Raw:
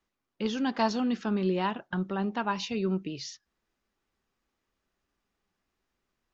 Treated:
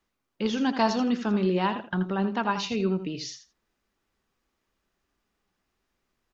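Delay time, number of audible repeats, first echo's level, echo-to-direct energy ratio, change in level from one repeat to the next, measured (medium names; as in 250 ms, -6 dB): 82 ms, 2, -10.5 dB, -10.5 dB, -15.5 dB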